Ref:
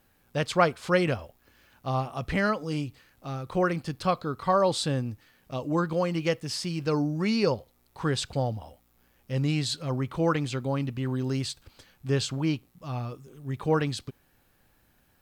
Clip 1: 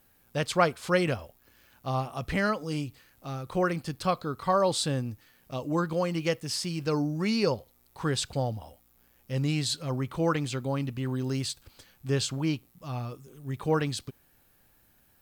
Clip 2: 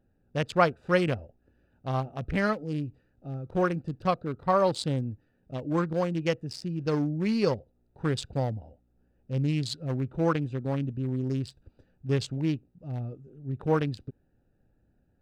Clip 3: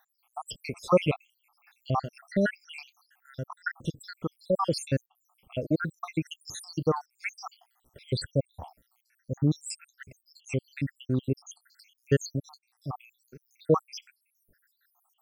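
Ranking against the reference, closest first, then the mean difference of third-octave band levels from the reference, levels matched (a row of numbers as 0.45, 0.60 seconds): 1, 2, 3; 1.5, 5.0, 15.5 decibels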